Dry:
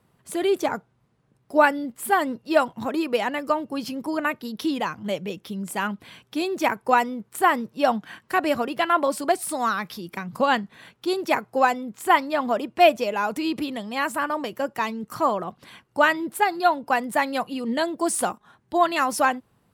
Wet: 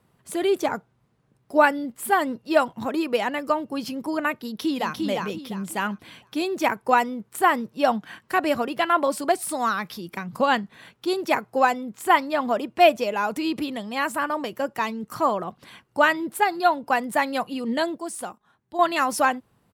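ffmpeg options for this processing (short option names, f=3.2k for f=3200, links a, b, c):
-filter_complex "[0:a]asplit=2[a][b];[b]afade=t=in:st=4.35:d=0.01,afade=t=out:st=5.03:d=0.01,aecho=0:1:350|700|1050|1400:0.668344|0.200503|0.060151|0.0180453[c];[a][c]amix=inputs=2:normalize=0,asplit=3[d][e][f];[d]atrim=end=17.982[g];[e]atrim=start=17.978:end=18.792,asetpts=PTS-STARTPTS,volume=-9dB[h];[f]atrim=start=18.788[i];[g][h]acrossfade=d=0.004:c1=hsin:c2=hsin[j];[j][i]acrossfade=d=0.004:c1=hsin:c2=hsin"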